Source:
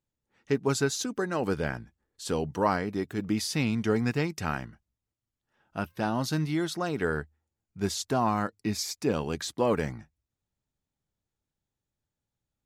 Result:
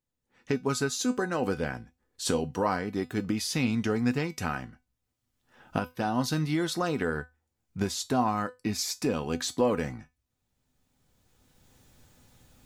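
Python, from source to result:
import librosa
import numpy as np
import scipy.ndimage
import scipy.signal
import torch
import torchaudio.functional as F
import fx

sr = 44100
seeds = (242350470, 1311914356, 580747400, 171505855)

y = fx.recorder_agc(x, sr, target_db=-16.5, rise_db_per_s=15.0, max_gain_db=30)
y = fx.comb_fb(y, sr, f0_hz=250.0, decay_s=0.21, harmonics='all', damping=0.0, mix_pct=70)
y = y * 10.0 ** (6.0 / 20.0)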